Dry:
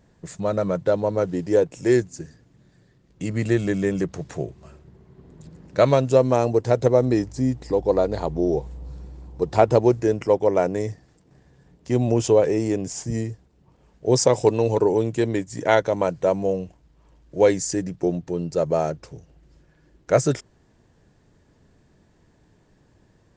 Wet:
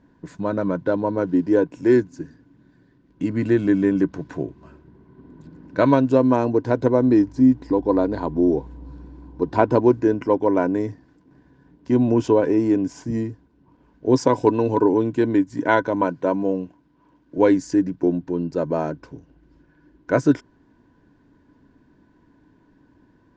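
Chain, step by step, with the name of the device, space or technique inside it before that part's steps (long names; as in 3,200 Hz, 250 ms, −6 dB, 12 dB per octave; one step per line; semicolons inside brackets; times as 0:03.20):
inside a cardboard box (low-pass filter 4,300 Hz 12 dB per octave; hollow resonant body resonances 280/990/1,500 Hz, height 15 dB, ringing for 45 ms)
0:16.05–0:17.38: high-pass filter 120 Hz 12 dB per octave
level −3.5 dB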